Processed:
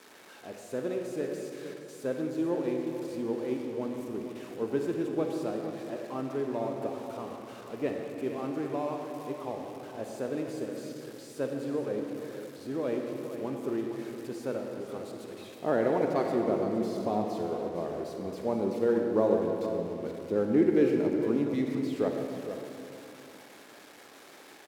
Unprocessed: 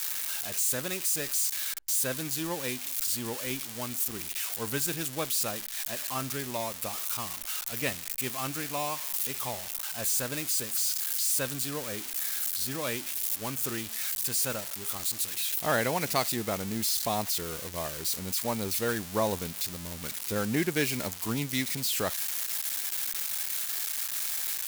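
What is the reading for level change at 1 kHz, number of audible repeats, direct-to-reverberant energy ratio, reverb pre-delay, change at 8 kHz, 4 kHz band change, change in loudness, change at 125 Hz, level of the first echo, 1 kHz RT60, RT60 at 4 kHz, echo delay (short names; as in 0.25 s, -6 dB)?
-2.0 dB, 1, 1.5 dB, 40 ms, -24.5 dB, -17.0 dB, -2.5 dB, -3.0 dB, -10.5 dB, 2.7 s, 1.6 s, 0.463 s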